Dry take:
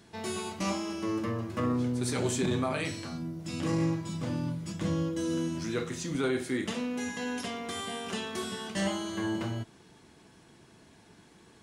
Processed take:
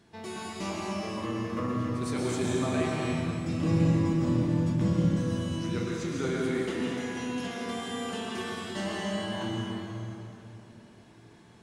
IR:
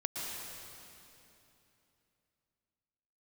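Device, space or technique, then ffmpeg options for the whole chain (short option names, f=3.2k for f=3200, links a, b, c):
swimming-pool hall: -filter_complex "[0:a]asettb=1/sr,asplit=3[a][b][c];[a]atrim=end=3.044[d];[b]atrim=start=3.04:end=4.93,asetpts=PTS-STARTPTS,afade=t=in:d=0.004:c=qsin,afade=t=out:st=1.886:d=0.004:c=qsin,lowshelf=f=340:g=10.5[e];[c]atrim=start=4.926[f];[d][e]acrossfade=d=0.004:c1=hsin:c2=qsin[g];[g][f]acrossfade=d=0.004:c1=qsin:c2=hsin[h];[1:a]atrim=start_sample=2205[i];[h][i]afir=irnorm=-1:irlink=0,highshelf=f=4.7k:g=-6,volume=-2dB"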